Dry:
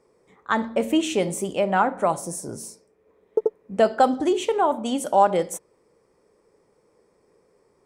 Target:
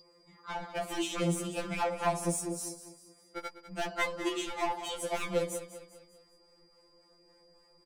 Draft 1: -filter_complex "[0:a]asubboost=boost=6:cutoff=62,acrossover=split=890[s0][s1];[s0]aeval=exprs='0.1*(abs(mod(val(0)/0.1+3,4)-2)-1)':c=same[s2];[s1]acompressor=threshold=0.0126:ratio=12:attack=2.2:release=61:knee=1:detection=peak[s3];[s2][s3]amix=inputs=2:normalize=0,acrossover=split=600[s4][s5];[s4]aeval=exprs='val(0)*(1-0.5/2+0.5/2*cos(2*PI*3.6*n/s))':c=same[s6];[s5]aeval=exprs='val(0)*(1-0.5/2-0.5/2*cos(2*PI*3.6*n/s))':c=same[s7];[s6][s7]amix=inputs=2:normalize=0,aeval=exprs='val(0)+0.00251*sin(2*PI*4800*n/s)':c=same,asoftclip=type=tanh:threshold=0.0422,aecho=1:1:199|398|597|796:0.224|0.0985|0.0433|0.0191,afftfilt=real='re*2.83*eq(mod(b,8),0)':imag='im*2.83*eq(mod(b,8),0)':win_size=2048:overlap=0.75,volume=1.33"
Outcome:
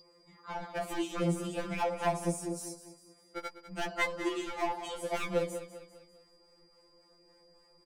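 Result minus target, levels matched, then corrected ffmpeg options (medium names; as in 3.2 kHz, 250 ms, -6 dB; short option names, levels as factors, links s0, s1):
compression: peak gain reduction +9 dB
-filter_complex "[0:a]asubboost=boost=6:cutoff=62,acrossover=split=890[s0][s1];[s0]aeval=exprs='0.1*(abs(mod(val(0)/0.1+3,4)-2)-1)':c=same[s2];[s1]acompressor=threshold=0.0398:ratio=12:attack=2.2:release=61:knee=1:detection=peak[s3];[s2][s3]amix=inputs=2:normalize=0,acrossover=split=600[s4][s5];[s4]aeval=exprs='val(0)*(1-0.5/2+0.5/2*cos(2*PI*3.6*n/s))':c=same[s6];[s5]aeval=exprs='val(0)*(1-0.5/2-0.5/2*cos(2*PI*3.6*n/s))':c=same[s7];[s6][s7]amix=inputs=2:normalize=0,aeval=exprs='val(0)+0.00251*sin(2*PI*4800*n/s)':c=same,asoftclip=type=tanh:threshold=0.0422,aecho=1:1:199|398|597|796:0.224|0.0985|0.0433|0.0191,afftfilt=real='re*2.83*eq(mod(b,8),0)':imag='im*2.83*eq(mod(b,8),0)':win_size=2048:overlap=0.75,volume=1.33"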